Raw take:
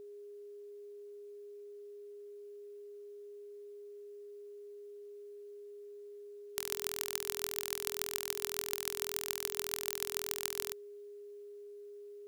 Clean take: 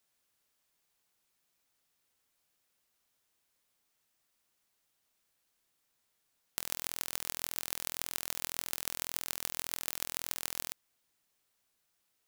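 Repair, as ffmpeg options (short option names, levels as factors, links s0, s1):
-af "bandreject=f=410:w=30"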